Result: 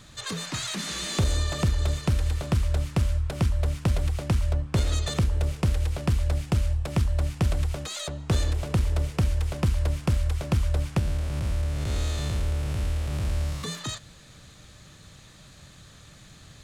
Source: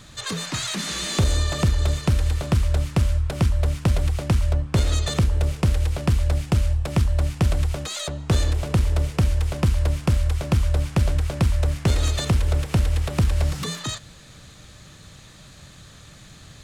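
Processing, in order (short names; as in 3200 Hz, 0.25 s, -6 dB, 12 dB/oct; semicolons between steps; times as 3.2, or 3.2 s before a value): 10.99–13.64 time blur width 0.213 s; gain -4 dB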